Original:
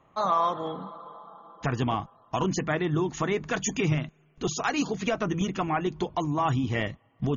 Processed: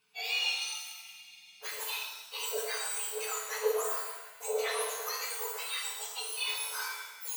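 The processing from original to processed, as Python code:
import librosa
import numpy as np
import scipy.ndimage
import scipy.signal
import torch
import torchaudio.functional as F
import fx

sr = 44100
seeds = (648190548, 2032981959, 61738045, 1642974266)

y = fx.octave_mirror(x, sr, pivot_hz=1700.0)
y = fx.rev_shimmer(y, sr, seeds[0], rt60_s=1.1, semitones=7, shimmer_db=-8, drr_db=-1.5)
y = F.gain(torch.from_numpy(y), -6.5).numpy()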